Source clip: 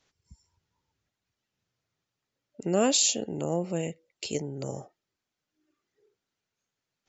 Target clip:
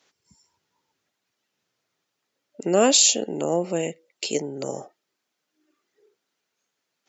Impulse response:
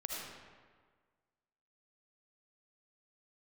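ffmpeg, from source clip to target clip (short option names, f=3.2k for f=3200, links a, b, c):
-af "highpass=250,volume=7dB"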